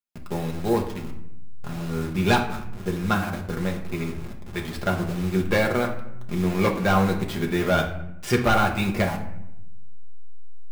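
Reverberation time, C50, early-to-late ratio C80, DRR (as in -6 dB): 0.85 s, 8.5 dB, 12.0 dB, 0.0 dB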